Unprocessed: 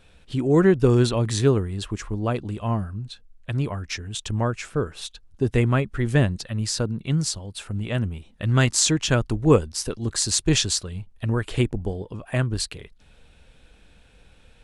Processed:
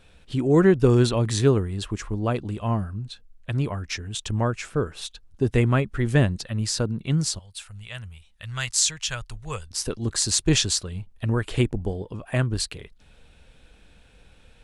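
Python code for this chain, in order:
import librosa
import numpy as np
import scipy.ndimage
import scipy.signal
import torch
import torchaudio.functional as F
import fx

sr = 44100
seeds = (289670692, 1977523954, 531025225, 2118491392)

y = fx.tone_stack(x, sr, knobs='10-0-10', at=(7.39, 9.71))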